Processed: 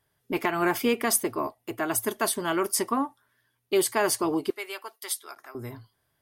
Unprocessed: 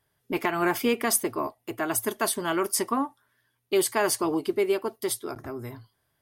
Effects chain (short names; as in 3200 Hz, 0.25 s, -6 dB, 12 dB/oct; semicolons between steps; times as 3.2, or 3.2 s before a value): 4.5–5.55 HPF 1100 Hz 12 dB/oct